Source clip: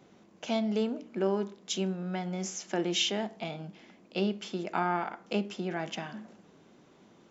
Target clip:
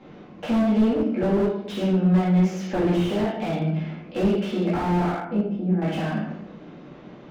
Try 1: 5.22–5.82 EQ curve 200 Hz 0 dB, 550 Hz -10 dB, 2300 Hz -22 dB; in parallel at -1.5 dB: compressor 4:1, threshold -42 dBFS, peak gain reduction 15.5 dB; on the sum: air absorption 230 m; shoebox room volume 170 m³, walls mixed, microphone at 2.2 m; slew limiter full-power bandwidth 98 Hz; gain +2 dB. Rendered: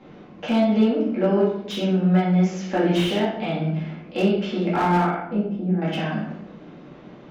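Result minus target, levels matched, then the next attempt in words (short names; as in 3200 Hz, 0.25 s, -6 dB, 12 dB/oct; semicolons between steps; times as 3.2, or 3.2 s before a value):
slew limiter: distortion -10 dB
5.22–5.82 EQ curve 200 Hz 0 dB, 550 Hz -10 dB, 2300 Hz -22 dB; in parallel at -1.5 dB: compressor 4:1, threshold -42 dBFS, peak gain reduction 15.5 dB; on the sum: air absorption 230 m; shoebox room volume 170 m³, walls mixed, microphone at 2.2 m; slew limiter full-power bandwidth 36 Hz; gain +2 dB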